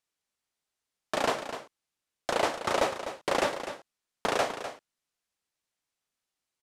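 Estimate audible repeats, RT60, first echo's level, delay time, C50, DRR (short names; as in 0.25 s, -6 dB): 1, none, -10.5 dB, 0.251 s, none, none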